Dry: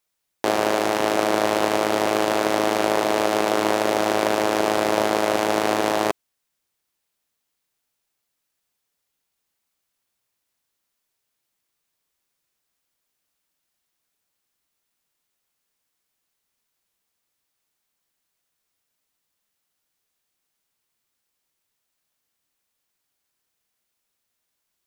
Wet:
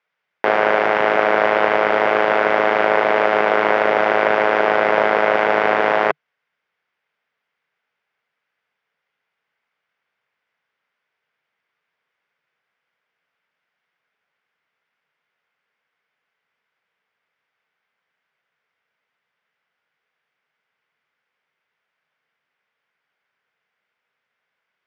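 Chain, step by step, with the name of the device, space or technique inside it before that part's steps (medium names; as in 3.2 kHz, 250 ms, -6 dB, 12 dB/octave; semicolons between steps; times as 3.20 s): overdrive pedal into a guitar cabinet (overdrive pedal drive 9 dB, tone 2.1 kHz, clips at -4 dBFS; cabinet simulation 110–4400 Hz, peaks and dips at 150 Hz +5 dB, 310 Hz -7 dB, 460 Hz +4 dB, 1.5 kHz +6 dB, 2.1 kHz +6 dB, 4.1 kHz -8 dB); trim +3 dB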